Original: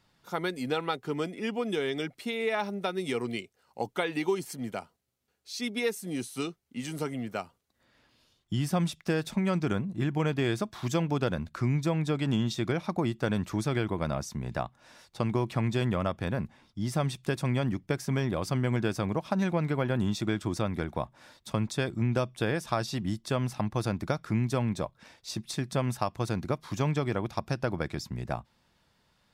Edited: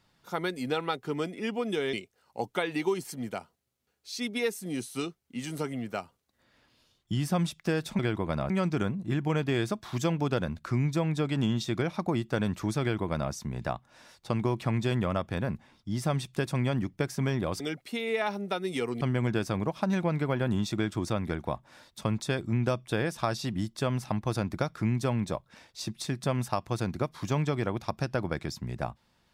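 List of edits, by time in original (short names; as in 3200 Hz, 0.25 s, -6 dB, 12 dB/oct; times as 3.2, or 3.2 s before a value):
1.93–3.34 move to 18.5
13.71–14.22 copy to 9.4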